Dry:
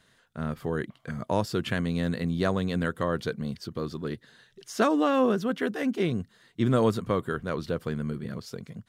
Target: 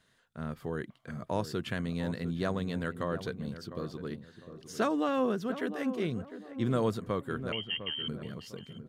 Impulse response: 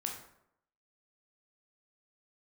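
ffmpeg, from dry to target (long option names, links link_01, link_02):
-filter_complex "[0:a]asettb=1/sr,asplit=3[link_01][link_02][link_03];[link_01]atrim=end=7.524[link_04];[link_02]atrim=start=7.52:end=8.08,asetpts=PTS-STARTPTS,afade=type=in:duration=0.004:curve=qsin,afade=type=out:start_time=0.556:duration=0.004:curve=qsin,lowpass=frequency=2800:width_type=q:width=0.5098,lowpass=frequency=2800:width_type=q:width=0.6013,lowpass=frequency=2800:width_type=q:width=0.9,lowpass=frequency=2800:width_type=q:width=2.563,afreqshift=-3300[link_05];[link_03]atrim=start=8.076[link_06];[link_04][link_05]acrossfade=duration=0.004:curve1=hsin:curve2=qsin[link_07];[link_07][link_06]acrossfade=duration=0.004:curve1=qsin:curve2=hsin,asplit=2[link_08][link_09];[link_09]adelay=703,lowpass=frequency=1100:poles=1,volume=-10.5dB,asplit=2[link_10][link_11];[link_11]adelay=703,lowpass=frequency=1100:poles=1,volume=0.36,asplit=2[link_12][link_13];[link_13]adelay=703,lowpass=frequency=1100:poles=1,volume=0.36,asplit=2[link_14][link_15];[link_15]adelay=703,lowpass=frequency=1100:poles=1,volume=0.36[link_16];[link_08][link_10][link_12][link_14][link_16]amix=inputs=5:normalize=0,volume=-6dB"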